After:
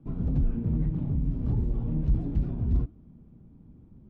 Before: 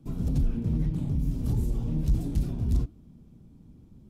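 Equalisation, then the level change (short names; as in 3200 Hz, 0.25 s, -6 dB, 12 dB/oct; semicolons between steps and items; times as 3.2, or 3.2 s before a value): LPF 1800 Hz 12 dB/oct; 0.0 dB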